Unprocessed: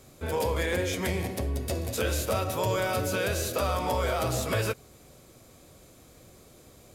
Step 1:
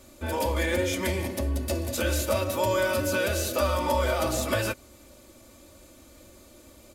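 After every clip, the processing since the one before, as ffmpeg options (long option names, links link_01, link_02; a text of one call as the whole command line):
ffmpeg -i in.wav -af "aecho=1:1:3.4:0.8" out.wav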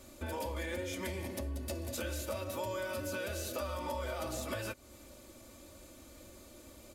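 ffmpeg -i in.wav -af "acompressor=threshold=-36dB:ratio=3,volume=-2.5dB" out.wav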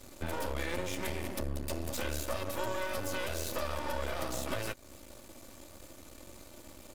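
ffmpeg -i in.wav -af "aeval=exprs='max(val(0),0)':channel_layout=same,volume=6.5dB" out.wav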